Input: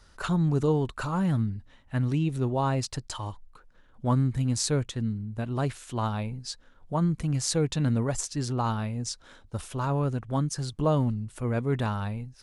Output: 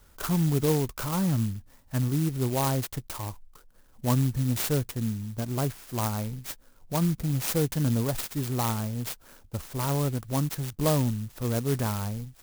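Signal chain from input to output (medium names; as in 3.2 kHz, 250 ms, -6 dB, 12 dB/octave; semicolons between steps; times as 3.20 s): sampling jitter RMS 0.11 ms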